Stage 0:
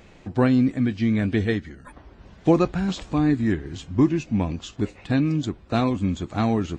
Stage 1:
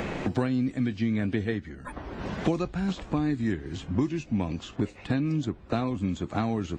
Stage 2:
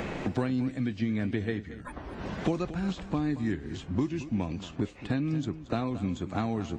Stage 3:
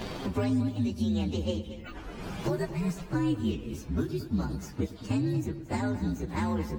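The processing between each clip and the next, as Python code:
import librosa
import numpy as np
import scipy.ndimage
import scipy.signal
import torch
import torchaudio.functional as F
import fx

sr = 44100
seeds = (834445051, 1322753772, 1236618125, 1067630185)

y1 = fx.band_squash(x, sr, depth_pct=100)
y1 = y1 * 10.0 ** (-6.5 / 20.0)
y2 = y1 + 10.0 ** (-14.0 / 20.0) * np.pad(y1, (int(227 * sr / 1000.0), 0))[:len(y1)]
y2 = y2 * 10.0 ** (-2.5 / 20.0)
y3 = fx.partial_stretch(y2, sr, pct=125)
y3 = fx.echo_bbd(y3, sr, ms=111, stages=2048, feedback_pct=61, wet_db=-16.0)
y3 = y3 * 10.0 ** (2.5 / 20.0)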